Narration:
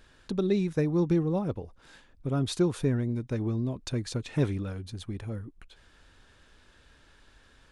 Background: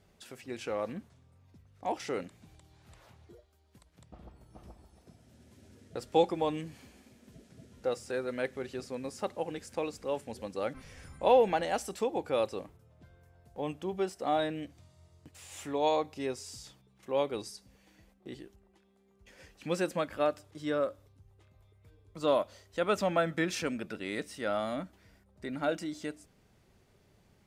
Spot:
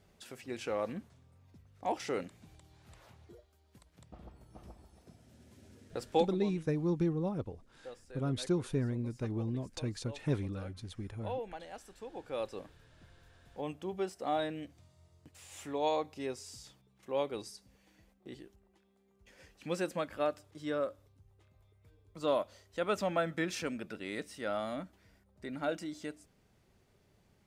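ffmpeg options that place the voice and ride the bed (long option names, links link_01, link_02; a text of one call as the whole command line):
ffmpeg -i stem1.wav -i stem2.wav -filter_complex "[0:a]adelay=5900,volume=-6dB[link_01];[1:a]volume=12dB,afade=type=out:start_time=6.07:duration=0.33:silence=0.16788,afade=type=in:start_time=12.03:duration=0.71:silence=0.237137[link_02];[link_01][link_02]amix=inputs=2:normalize=0" out.wav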